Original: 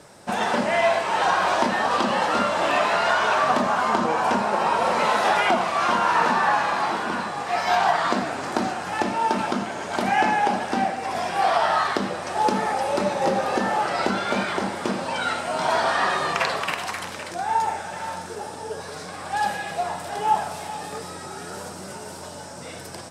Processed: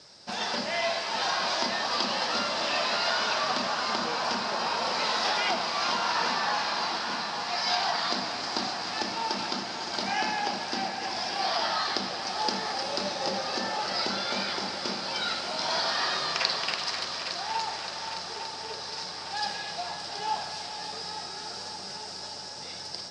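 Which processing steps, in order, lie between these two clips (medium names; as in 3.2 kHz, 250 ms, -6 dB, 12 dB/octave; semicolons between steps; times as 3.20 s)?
four-pole ladder low-pass 5.4 kHz, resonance 65%; treble shelf 3.4 kHz +12 dB; on a send: multi-head delay 286 ms, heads all three, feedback 73%, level -15 dB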